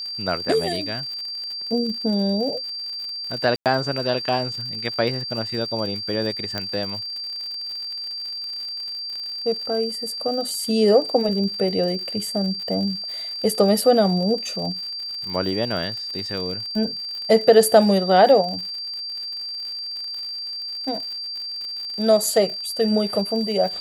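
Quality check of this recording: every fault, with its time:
surface crackle 93 per second −31 dBFS
whistle 4,700 Hz −28 dBFS
0:03.56–0:03.66: drop-out 98 ms
0:06.58: click −11 dBFS

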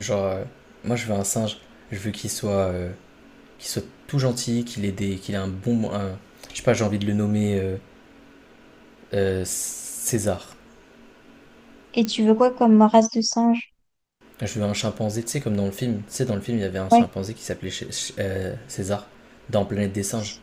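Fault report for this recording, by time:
0:12.05: click −12 dBFS

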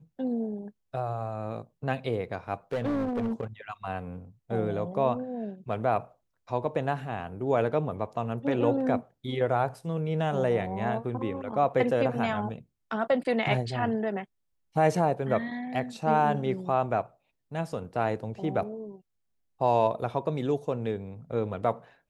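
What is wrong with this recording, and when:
0:02.72–0:03.44: clipping −25 dBFS

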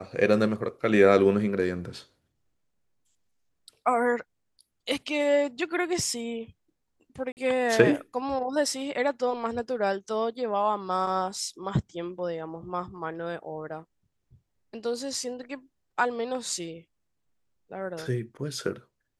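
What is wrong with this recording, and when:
0:07.32–0:07.37: drop-out 49 ms

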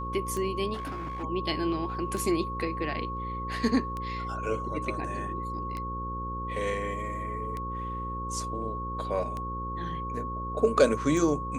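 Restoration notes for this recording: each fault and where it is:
mains buzz 60 Hz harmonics 9 −37 dBFS
scratch tick 33 1/3 rpm −22 dBFS
whistle 1,100 Hz −34 dBFS
0:00.73–0:01.24: clipping −32 dBFS

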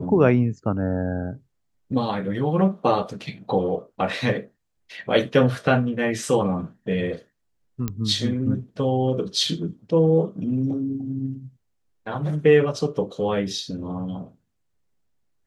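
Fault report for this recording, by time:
0:07.88: click −13 dBFS

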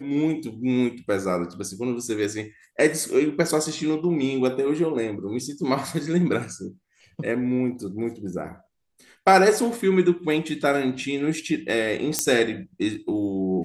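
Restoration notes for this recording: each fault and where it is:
0:12.19: click −4 dBFS

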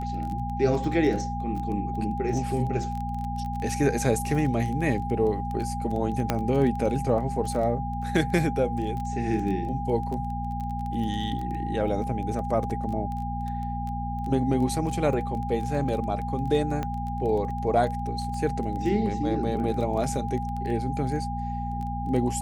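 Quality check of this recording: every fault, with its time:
surface crackle 13 per second −31 dBFS
mains hum 60 Hz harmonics 4 −32 dBFS
whistle 810 Hz −32 dBFS
0:06.30: click −9 dBFS
0:12.70: drop-out 2.2 ms
0:16.83: click −17 dBFS

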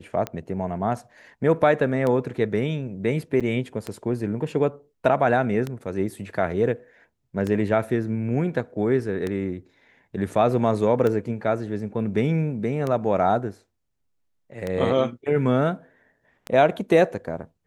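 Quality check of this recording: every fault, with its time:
scratch tick 33 1/3 rpm −14 dBFS
0:03.40–0:03.41: drop-out 6.4 ms

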